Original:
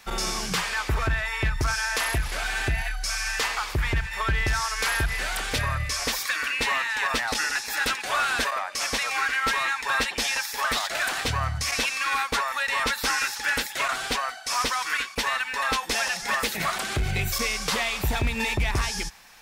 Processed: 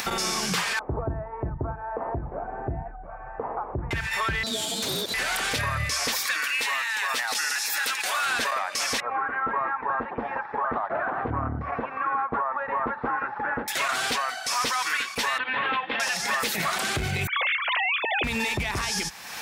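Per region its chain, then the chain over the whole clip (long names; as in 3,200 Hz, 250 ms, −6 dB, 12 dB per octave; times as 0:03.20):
0:00.79–0:03.91: inverse Chebyshev low-pass filter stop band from 4,600 Hz, stop band 80 dB + mains-hum notches 50/100/150/200/250/300/350 Hz
0:04.43–0:05.14: Butterworth high-pass 1,300 Hz + ring modulation 2,000 Hz
0:06.42–0:08.26: high-pass filter 700 Hz 6 dB per octave + high-shelf EQ 8,600 Hz +7.5 dB
0:09.00–0:13.68: low-pass filter 1,200 Hz 24 dB per octave + saturating transformer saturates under 250 Hz
0:15.38–0:16.00: lower of the sound and its delayed copy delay 3.8 ms + Butterworth low-pass 3,400 Hz 48 dB per octave + low-shelf EQ 130 Hz −9 dB
0:17.27–0:18.24: three sine waves on the formant tracks + spectral tilt +3 dB per octave
whole clip: upward compression, threshold −27 dBFS; high-pass filter 100 Hz 12 dB per octave; brickwall limiter −23 dBFS; level +5 dB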